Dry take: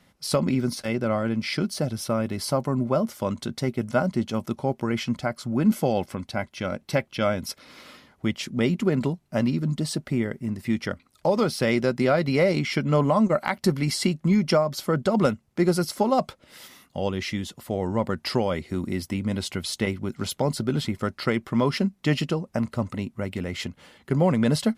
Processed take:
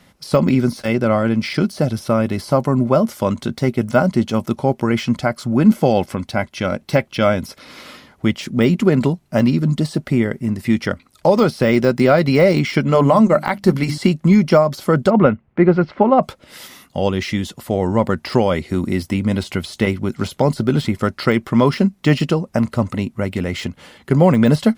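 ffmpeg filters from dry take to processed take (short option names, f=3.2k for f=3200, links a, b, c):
-filter_complex "[0:a]asettb=1/sr,asplit=3[a][b][c];[a]atrim=end=12.824[d];[b]atrim=start=12.82:end=13.98,asetpts=PTS-STARTPTS,afade=t=in:d=0.004:c=qsin,afade=t=out:st=1.156:d=0.004:c=qsin,bandreject=f=50:t=h:w=6,bandreject=f=100:t=h:w=6,bandreject=f=150:t=h:w=6,bandreject=f=200:t=h:w=6,bandreject=f=250:t=h:w=6,bandreject=f=300:t=h:w=6[e];[c]atrim=start=13.976[f];[d][e]acrossfade=d=0.004:c1=hsin:c2=qsin[g];[g][f]acrossfade=d=0.004:c1=qsin:c2=hsin,asettb=1/sr,asplit=3[h][i][j];[h]atrim=end=15.104[k];[i]atrim=start=15.1:end=16.23,asetpts=PTS-STARTPTS,afade=t=in:d=0.004:c=qsin,afade=t=out:st=1.126:d=0.004:c=qsin,lowpass=f=2.5k:w=0.5412,lowpass=f=2.5k:w=1.3066[l];[j]atrim=start=16.226[m];[k][l]acrossfade=d=0.004:c1=hsin:c2=qsin[n];[n][m]acrossfade=d=0.004:c1=qsin:c2=hsin,deesser=0.9,volume=8.5dB"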